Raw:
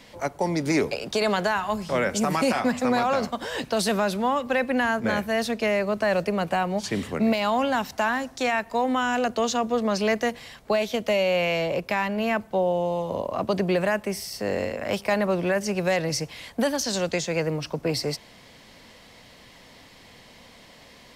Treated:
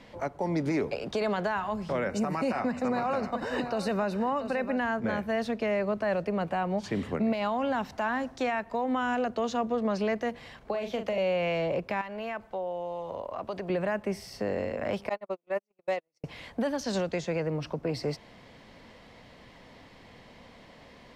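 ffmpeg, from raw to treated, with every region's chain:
-filter_complex "[0:a]asettb=1/sr,asplit=3[a][b][c];[a]atrim=end=2.084[d];[b]atrim=start=2.08:end=4.79,asetpts=PTS-STARTPTS,afade=t=in:d=0.004:c=qsin,afade=t=out:st=2.706:d=0.004:c=qsin,asuperstop=centerf=3300:order=12:qfactor=6.4,aecho=1:1:686:0.237,atrim=end_sample=119511[e];[c]atrim=start=4.786[f];[d][e]acrossfade=d=0.004:c1=hsin:c2=qsin[g];[g][f]acrossfade=d=0.004:c1=qsin:c2=hsin,asettb=1/sr,asplit=3[h][i][j];[h]atrim=end=10.574[k];[i]atrim=start=10.57:end=11.18,asetpts=PTS-STARTPTS,afade=t=in:d=0.004:c=qsin,afade=t=out:st=0.606:d=0.004:c=qsin,asplit=2[l][m];[m]adelay=40,volume=-8dB[n];[l][n]amix=inputs=2:normalize=0,atrim=end_sample=26901,acrossover=split=130|410[o][p][q];[o]acompressor=threshold=-51dB:ratio=4[r];[p]acompressor=threshold=-36dB:ratio=4[s];[q]acompressor=threshold=-28dB:ratio=4[t];[r][s][t]amix=inputs=3:normalize=0[u];[j]atrim=start=11.176[v];[k][u]acrossfade=d=0.004:c1=hsin:c2=qsin[w];[w][v]acrossfade=d=0.004:c1=qsin:c2=hsin,asettb=1/sr,asplit=3[x][y][z];[x]atrim=end=12.014[aa];[y]atrim=start=12.01:end=13.7,asetpts=PTS-STARTPTS,afade=t=in:d=0.004:c=qsin,afade=t=out:st=1.686:d=0.004:c=qsin,equalizer=f=170:w=0.54:g=-11,acompressor=threshold=-34dB:ratio=2:attack=3.2:release=140:knee=1:detection=peak[ab];[z]atrim=start=13.696[ac];[aa][ab]acrossfade=d=0.004:c1=hsin:c2=qsin[ad];[ad][ac]acrossfade=d=0.004:c1=qsin:c2=hsin,asettb=1/sr,asplit=3[ae][af][ag];[ae]atrim=end=15.094[ah];[af]atrim=start=15.09:end=16.24,asetpts=PTS-STARTPTS,afade=t=in:d=0.004:c=qsin,afade=t=out:st=1.146:d=0.004:c=qsin,highpass=340,agate=range=-54dB:threshold=-23dB:ratio=16:release=100:detection=peak,bandreject=f=1.6k:w=5.2[ai];[ag]atrim=start=16.236[aj];[ah][ai]acrossfade=d=0.004:c1=hsin:c2=qsin[ak];[ak][aj]acrossfade=d=0.004:c1=qsin:c2=hsin,lowpass=f=1.7k:p=1,alimiter=limit=-20.5dB:level=0:latency=1:release=213"

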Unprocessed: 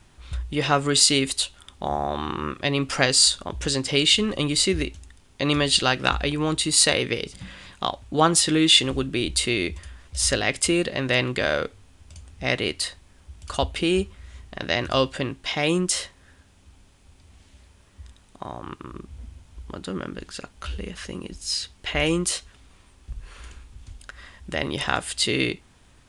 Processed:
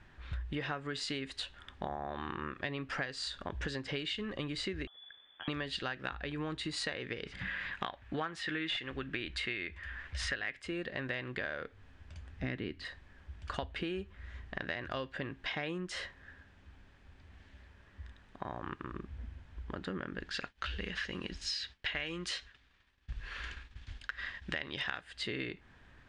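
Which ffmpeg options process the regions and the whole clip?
-filter_complex "[0:a]asettb=1/sr,asplit=3[a][b][c];[a]atrim=end=4.874[d];[b]atrim=start=4.87:end=5.48,asetpts=PTS-STARTPTS,afade=t=in:d=0.004:c=qsin,afade=t=out:st=0.606:d=0.004:c=qsin,equalizer=f=700:w=0.81:g=-12,acompressor=threshold=-43dB:ratio=2.5:attack=3.2:release=140:knee=1:detection=peak,lowpass=f=3k:t=q:w=0.5098,lowpass=f=3k:t=q:w=0.6013,lowpass=f=3k:t=q:w=0.9,lowpass=f=3k:t=q:w=2.563,afreqshift=-3500[e];[c]atrim=start=5.476[f];[d][e]acrossfade=d=0.004:c1=hsin:c2=qsin[g];[g][f]acrossfade=d=0.004:c1=qsin:c2=hsin,asettb=1/sr,asplit=3[h][i][j];[h]atrim=end=7.264[k];[i]atrim=start=7.26:end=10.62,asetpts=PTS-STARTPTS,afade=t=in:d=0.004:c=qsin,afade=t=out:st=3.356:d=0.004:c=qsin,equalizer=f=2k:w=0.74:g=9.5,aeval=exprs='clip(val(0),-1,0.531)':c=same[l];[j]atrim=start=10.616[m];[k][l]acrossfade=d=0.004:c1=hsin:c2=qsin[n];[n][m]acrossfade=d=0.004:c1=qsin:c2=hsin,asettb=1/sr,asplit=3[o][p][q];[o]atrim=end=12.434[r];[p]atrim=start=12.43:end=12.85,asetpts=PTS-STARTPTS,afade=t=in:d=0.004:c=qsin,afade=t=out:st=0.416:d=0.004:c=qsin,lowshelf=f=410:t=q:w=1.5:g=9,acrossover=split=5100[s][t];[t]acompressor=threshold=-42dB:ratio=4:attack=1:release=60[u];[s][u]amix=inputs=2:normalize=0[v];[q]atrim=start=12.846[w];[r][v]acrossfade=d=0.004:c1=hsin:c2=qsin[x];[x][w]acrossfade=d=0.004:c1=qsin:c2=hsin,asettb=1/sr,asplit=3[y][z][aa];[y]atrim=end=20.294[ab];[z]atrim=start=20.29:end=25.01,asetpts=PTS-STARTPTS,afade=t=in:d=0.004:c=qsin,afade=t=out:st=4.716:d=0.004:c=qsin,equalizer=f=4.2k:t=o:w=2.5:g=11.5,agate=range=-33dB:threshold=-40dB:ratio=3:release=100:detection=peak[ac];[aa]atrim=start=25.006[ad];[ab][ac]acrossfade=d=0.004:c1=hsin:c2=qsin[ae];[ae][ad]acrossfade=d=0.004:c1=qsin:c2=hsin,lowpass=3.3k,equalizer=f=1.7k:t=o:w=0.4:g=10,acompressor=threshold=-30dB:ratio=10,volume=-4.5dB"

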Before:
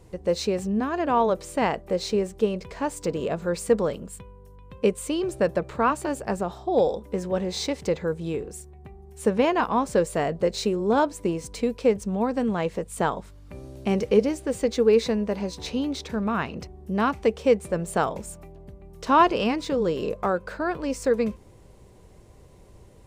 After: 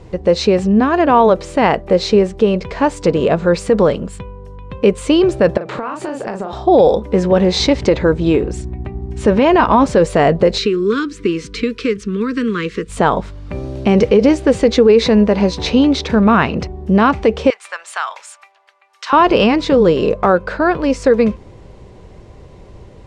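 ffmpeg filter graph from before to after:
-filter_complex "[0:a]asettb=1/sr,asplit=3[a][b][c];[a]atrim=end=5.574[d];[b]atrim=start=5.57:end=6.53,asetpts=PTS-STARTPTS,afade=t=in:d=0.004:c=qsin,afade=t=out:st=0.956:d=0.004:c=qsin,highpass=180,asplit=2[e][f];[f]adelay=37,volume=-5.5dB[g];[e][g]amix=inputs=2:normalize=0,atrim=end_sample=42336,acompressor=threshold=-34dB:ratio=16:attack=3.2:release=140:knee=1:detection=peak[h];[c]atrim=start=6.526[i];[d][h]acrossfade=d=0.004:c1=hsin:c2=qsin[j];[j][i]acrossfade=d=0.004:c1=qsin:c2=hsin,asettb=1/sr,asplit=3[k][l][m];[k]atrim=end=7.594[n];[l]atrim=start=7.59:end=9.86,asetpts=PTS-STARTPTS,afade=t=in:d=0.004:c=qsin,afade=t=out:st=2.266:d=0.004:c=qsin,lowpass=9.2k,aecho=1:1:3.2:0.32,atrim=end_sample=100107,aeval=exprs='val(0)+0.00891*(sin(2*PI*60*n/s)+sin(2*PI*2*60*n/s)/2+sin(2*PI*3*60*n/s)/3+sin(2*PI*4*60*n/s)/4+sin(2*PI*5*60*n/s)/5)':c=same[o];[m]atrim=start=9.856[p];[n][o]acrossfade=d=0.004:c1=hsin:c2=qsin[q];[q][p]acrossfade=d=0.004:c1=qsin:c2=hsin,asettb=1/sr,asplit=3[r][s][t];[r]atrim=end=10.584[u];[s]atrim=start=10.58:end=12.89,asetpts=PTS-STARTPTS,afade=t=in:d=0.004:c=qsin,afade=t=out:st=2.306:d=0.004:c=qsin,equalizer=f=76:w=1:g=-7,acrossover=split=270|590|5000[v][w][x][y];[v]acompressor=threshold=-44dB:ratio=3[z];[w]acompressor=threshold=-33dB:ratio=3[aa];[x]acompressor=threshold=-32dB:ratio=3[ab];[y]acompressor=threshold=-50dB:ratio=3[ac];[z][aa][ab][ac]amix=inputs=4:normalize=0,asuperstop=centerf=720:order=8:qfactor=1[ad];[t]atrim=start=12.886[ae];[u][ad]acrossfade=d=0.004:c1=hsin:c2=qsin[af];[af][ae]acrossfade=d=0.004:c1=qsin:c2=hsin,asettb=1/sr,asplit=3[ag][ah][ai];[ag]atrim=end=17.504[aj];[ah]atrim=start=17.5:end=19.13,asetpts=PTS-STARTPTS,afade=t=in:d=0.004:c=qsin,afade=t=out:st=1.626:d=0.004:c=qsin,highpass=f=1.1k:w=0.5412,highpass=f=1.1k:w=1.3066,acompressor=threshold=-32dB:ratio=2.5:attack=3.2:release=140:knee=1:detection=peak[ak];[ai]atrim=start=19.126[al];[aj][ak]acrossfade=d=0.004:c1=hsin:c2=qsin[am];[am][al]acrossfade=d=0.004:c1=qsin:c2=hsin,lowpass=4.6k,dynaudnorm=f=770:g=13:m=3.5dB,alimiter=level_in=14dB:limit=-1dB:release=50:level=0:latency=1,volume=-1dB"

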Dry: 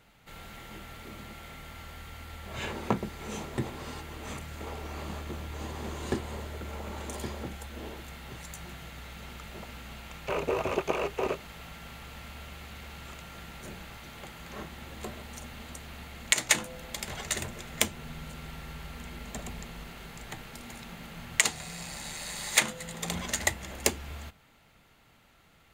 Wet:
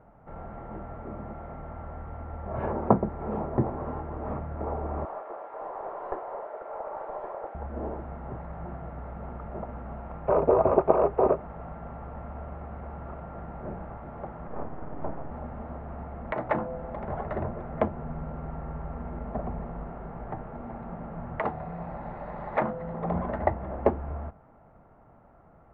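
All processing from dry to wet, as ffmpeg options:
-filter_complex "[0:a]asettb=1/sr,asplit=3[a][b][c];[a]atrim=end=5.054[d];[b]atrim=start=5.05:end=7.55,asetpts=PTS-STARTPTS,afade=t=in:d=0.004:c=qsin,afade=t=out:st=2.496:d=0.004:c=qsin,highpass=f=500:w=0.5412,highpass=f=500:w=1.3066,aeval=exprs='clip(val(0),-1,0.00944)':c=same[e];[c]atrim=start=7.546[f];[d][e]acrossfade=d=0.004:c1=hsin:c2=qsin[g];[g][f]acrossfade=d=0.004:c1=qsin:c2=hsin,asettb=1/sr,asplit=3[h][i][j];[h]atrim=end=14.474[k];[i]atrim=start=14.47:end=15.31,asetpts=PTS-STARTPTS,afade=t=in:d=0.004:c=qsin,afade=t=out:st=0.836:d=0.004:c=qsin,highpass=43,lowshelf=f=190:g=5.5,aeval=exprs='abs(val(0))':c=same[l];[j]atrim=start=15.306[m];[k][l]acrossfade=d=0.004:c1=hsin:c2=qsin[n];[n][m]acrossfade=d=0.004:c1=qsin:c2=hsin,lowpass=f=1.2k:w=0.5412,lowpass=f=1.2k:w=1.3066,equalizer=f=660:w=2.4:g=6,volume=6.5dB"

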